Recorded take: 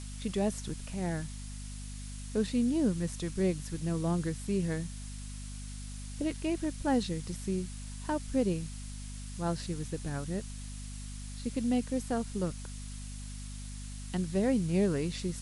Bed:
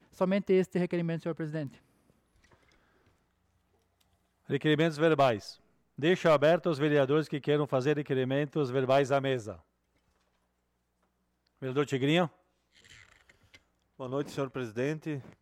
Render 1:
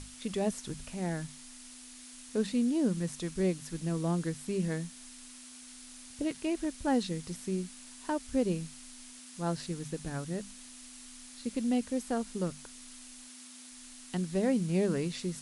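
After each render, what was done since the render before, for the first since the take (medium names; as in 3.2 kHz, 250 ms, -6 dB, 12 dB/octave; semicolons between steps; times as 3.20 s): hum notches 50/100/150/200 Hz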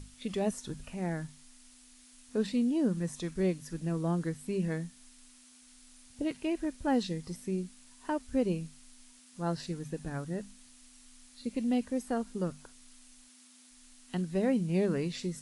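noise print and reduce 8 dB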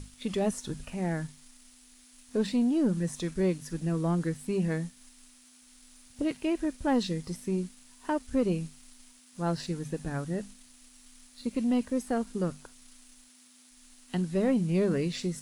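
waveshaping leveller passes 1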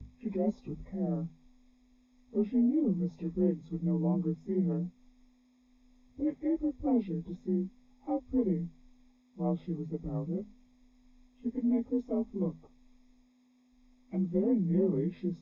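frequency axis rescaled in octaves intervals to 88%; boxcar filter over 30 samples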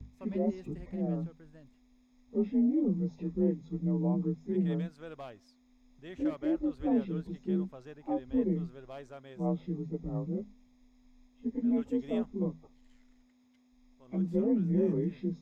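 add bed -20.5 dB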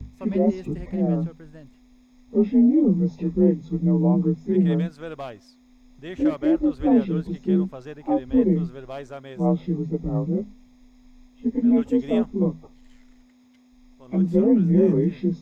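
trim +10.5 dB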